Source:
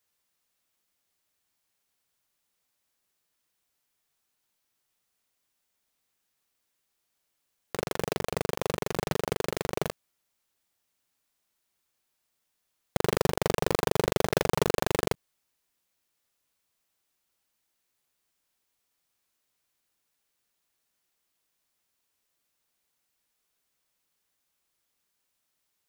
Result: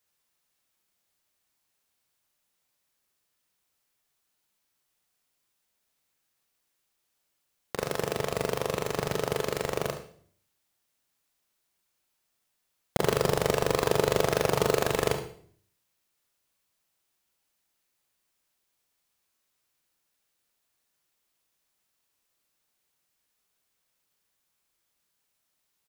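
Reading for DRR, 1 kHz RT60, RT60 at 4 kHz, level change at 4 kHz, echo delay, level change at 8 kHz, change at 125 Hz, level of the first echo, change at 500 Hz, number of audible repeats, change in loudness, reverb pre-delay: 5.5 dB, 0.50 s, 0.50 s, +1.0 dB, 71 ms, +1.0 dB, +0.5 dB, −12.0 dB, +2.0 dB, 1, +1.5 dB, 29 ms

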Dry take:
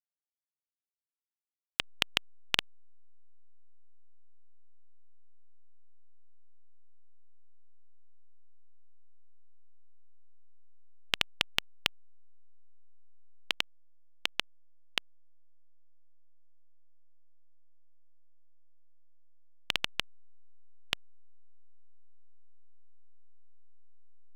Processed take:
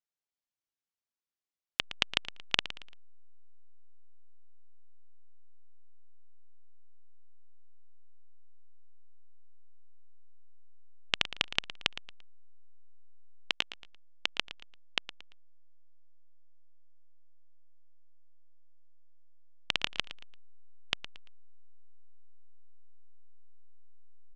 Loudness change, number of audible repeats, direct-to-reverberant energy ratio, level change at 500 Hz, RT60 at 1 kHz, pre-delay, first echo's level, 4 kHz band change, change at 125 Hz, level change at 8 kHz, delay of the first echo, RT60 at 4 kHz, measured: 0.0 dB, 3, no reverb audible, 0.0 dB, no reverb audible, no reverb audible, −14.0 dB, 0.0 dB, +0.5 dB, −2.0 dB, 114 ms, no reverb audible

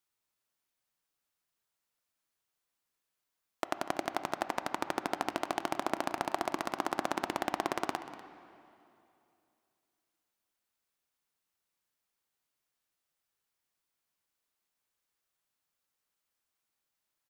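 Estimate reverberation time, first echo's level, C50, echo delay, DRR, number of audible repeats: 2.7 s, −16.0 dB, 10.5 dB, 244 ms, 10.0 dB, 1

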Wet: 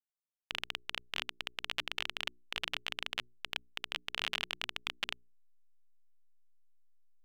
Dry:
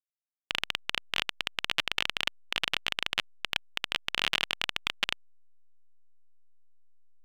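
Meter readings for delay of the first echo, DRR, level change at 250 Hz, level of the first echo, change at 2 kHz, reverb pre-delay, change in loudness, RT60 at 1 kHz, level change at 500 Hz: no echo audible, no reverb audible, −8.0 dB, no echo audible, −7.5 dB, no reverb audible, −7.5 dB, no reverb audible, −7.5 dB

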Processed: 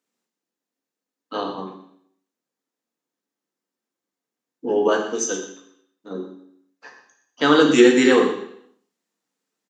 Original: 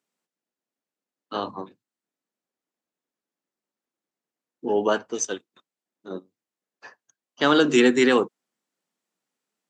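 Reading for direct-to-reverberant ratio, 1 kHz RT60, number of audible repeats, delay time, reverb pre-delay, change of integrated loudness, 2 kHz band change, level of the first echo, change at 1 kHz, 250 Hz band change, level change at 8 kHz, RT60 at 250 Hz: 1.0 dB, 0.65 s, 1, 121 ms, 3 ms, +3.5 dB, +2.5 dB, −12.5 dB, +2.5 dB, +4.5 dB, +3.5 dB, 0.75 s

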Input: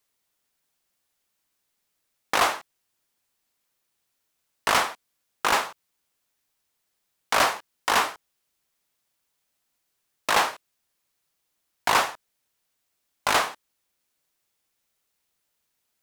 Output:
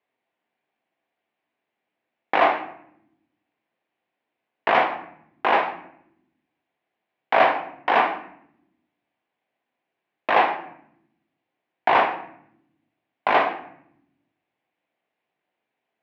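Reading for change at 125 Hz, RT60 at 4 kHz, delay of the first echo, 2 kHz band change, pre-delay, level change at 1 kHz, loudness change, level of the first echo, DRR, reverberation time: can't be measured, 0.45 s, no echo audible, +1.5 dB, 8 ms, +4.5 dB, +2.5 dB, no echo audible, 4.5 dB, 0.70 s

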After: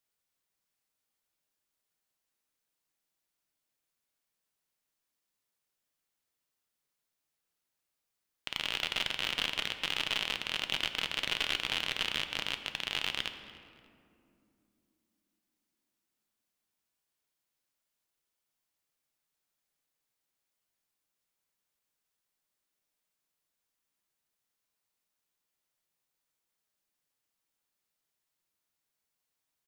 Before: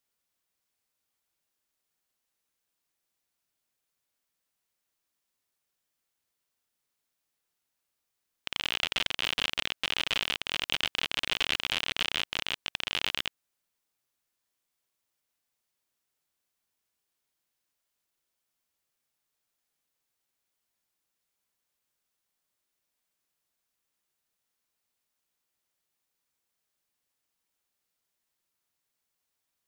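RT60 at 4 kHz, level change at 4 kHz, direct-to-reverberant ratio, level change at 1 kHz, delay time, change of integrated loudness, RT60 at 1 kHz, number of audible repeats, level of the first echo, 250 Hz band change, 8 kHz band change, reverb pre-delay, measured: 1.3 s, −2.5 dB, 7.5 dB, −2.0 dB, 293 ms, −2.5 dB, 2.3 s, 2, −22.0 dB, −2.0 dB, −2.5 dB, 5 ms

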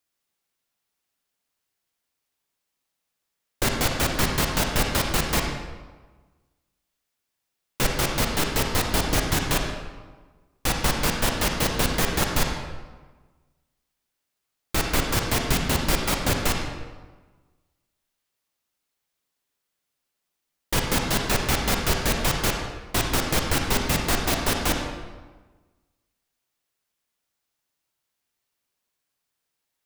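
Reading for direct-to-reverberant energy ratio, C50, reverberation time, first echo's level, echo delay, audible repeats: 2.0 dB, 3.0 dB, 1.3 s, no echo audible, no echo audible, no echo audible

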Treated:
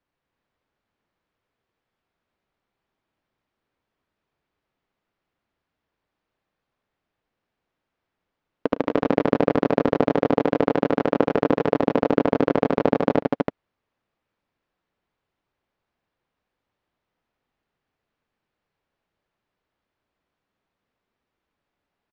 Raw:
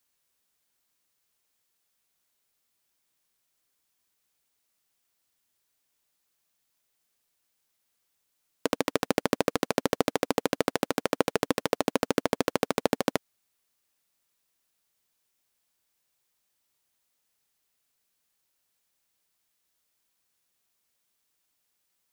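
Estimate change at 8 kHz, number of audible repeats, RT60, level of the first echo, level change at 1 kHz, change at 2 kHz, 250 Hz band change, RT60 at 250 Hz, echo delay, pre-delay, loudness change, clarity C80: below −20 dB, 4, no reverb audible, −17.5 dB, +6.0 dB, +2.0 dB, +9.0 dB, no reverb audible, 68 ms, no reverb audible, +7.0 dB, no reverb audible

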